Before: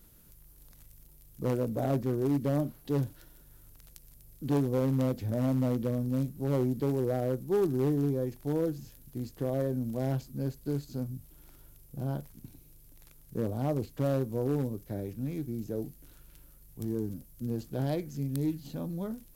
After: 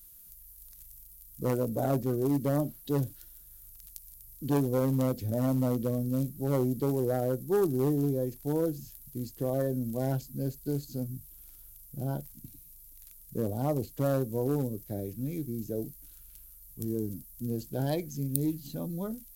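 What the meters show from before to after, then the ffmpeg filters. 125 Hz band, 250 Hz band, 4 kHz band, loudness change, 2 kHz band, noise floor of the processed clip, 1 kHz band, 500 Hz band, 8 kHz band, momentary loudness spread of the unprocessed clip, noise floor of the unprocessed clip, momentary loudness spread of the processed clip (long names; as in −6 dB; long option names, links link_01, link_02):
0.0 dB, +0.5 dB, +1.5 dB, +0.5 dB, +0.5 dB, −53 dBFS, +2.5 dB, +1.0 dB, +7.5 dB, 10 LU, −57 dBFS, 21 LU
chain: -af "afftdn=noise_reduction=13:noise_floor=-43,crystalizer=i=7.5:c=0"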